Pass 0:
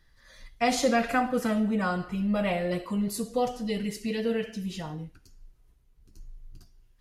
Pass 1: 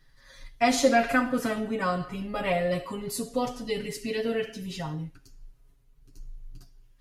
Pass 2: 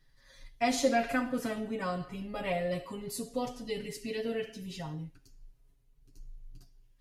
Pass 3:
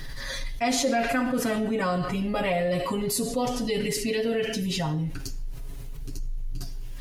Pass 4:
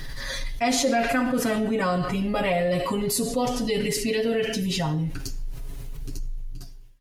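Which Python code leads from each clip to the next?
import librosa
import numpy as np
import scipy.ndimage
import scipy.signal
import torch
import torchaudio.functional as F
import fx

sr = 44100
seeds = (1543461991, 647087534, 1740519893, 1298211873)

y1 = x + 0.76 * np.pad(x, (int(7.3 * sr / 1000.0), 0))[:len(x)]
y2 = fx.peak_eq(y1, sr, hz=1300.0, db=-4.0, octaves=0.77)
y2 = F.gain(torch.from_numpy(y2), -5.5).numpy()
y3 = fx.env_flatten(y2, sr, amount_pct=70)
y4 = fx.fade_out_tail(y3, sr, length_s=0.88)
y4 = F.gain(torch.from_numpy(y4), 2.0).numpy()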